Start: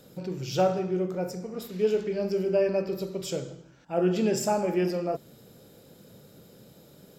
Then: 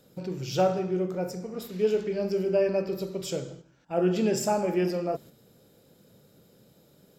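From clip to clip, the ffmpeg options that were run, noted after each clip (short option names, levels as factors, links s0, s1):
-af "agate=range=0.501:threshold=0.00562:ratio=16:detection=peak"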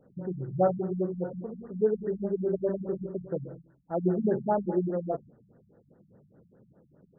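-af "afftfilt=real='re*lt(b*sr/1024,200*pow(2000/200,0.5+0.5*sin(2*PI*4.9*pts/sr)))':imag='im*lt(b*sr/1024,200*pow(2000/200,0.5+0.5*sin(2*PI*4.9*pts/sr)))':win_size=1024:overlap=0.75"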